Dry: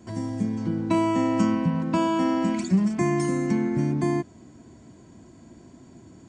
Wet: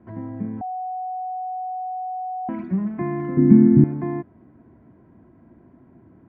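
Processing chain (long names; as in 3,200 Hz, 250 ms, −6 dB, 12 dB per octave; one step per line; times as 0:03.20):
low-pass filter 1,900 Hz 24 dB per octave
0:00.61–0:02.49: beep over 741 Hz −23.5 dBFS
0:03.37–0:03.84: low shelf with overshoot 400 Hz +13 dB, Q 1.5
level −2.5 dB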